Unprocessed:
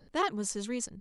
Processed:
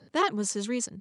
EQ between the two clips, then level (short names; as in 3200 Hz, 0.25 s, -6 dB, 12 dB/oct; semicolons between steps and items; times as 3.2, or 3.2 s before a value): HPF 94 Hz 24 dB/oct; LPF 9700 Hz 24 dB/oct; notch 730 Hz, Q 15; +4.5 dB